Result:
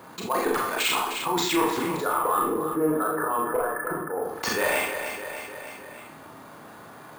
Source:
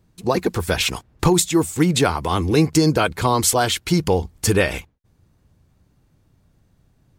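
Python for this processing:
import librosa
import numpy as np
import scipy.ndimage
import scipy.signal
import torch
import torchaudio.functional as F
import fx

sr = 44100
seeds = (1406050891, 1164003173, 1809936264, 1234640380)

y = scipy.signal.sosfilt(scipy.signal.butter(2, 290.0, 'highpass', fs=sr, output='sos'), x)
y = fx.peak_eq(y, sr, hz=1100.0, db=13.0, octaves=1.5)
y = fx.level_steps(y, sr, step_db=9)
y = fx.auto_swell(y, sr, attack_ms=305.0)
y = np.clip(y, -10.0 ** (-15.0 / 20.0), 10.0 ** (-15.0 / 20.0))
y = fx.cheby_ripple(y, sr, hz=1800.0, ripple_db=9, at=(1.95, 4.23), fade=0.02)
y = 10.0 ** (-17.5 / 20.0) * np.tanh(y / 10.0 ** (-17.5 / 20.0))
y = fx.echo_feedback(y, sr, ms=305, feedback_pct=41, wet_db=-15.0)
y = fx.rev_schroeder(y, sr, rt60_s=0.42, comb_ms=26, drr_db=-2.0)
y = np.repeat(scipy.signal.resample_poly(y, 1, 4), 4)[:len(y)]
y = fx.env_flatten(y, sr, amount_pct=50)
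y = F.gain(torch.from_numpy(y), -2.5).numpy()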